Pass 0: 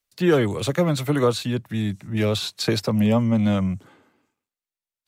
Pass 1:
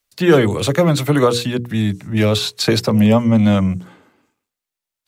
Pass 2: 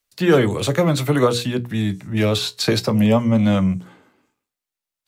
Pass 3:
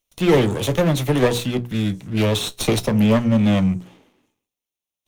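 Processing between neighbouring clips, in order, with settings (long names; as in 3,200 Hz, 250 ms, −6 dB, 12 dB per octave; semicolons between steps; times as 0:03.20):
mains-hum notches 60/120/180/240/300/360/420/480 Hz; level +7 dB
tuned comb filter 63 Hz, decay 0.18 s, mix 50%
lower of the sound and its delayed copy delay 0.31 ms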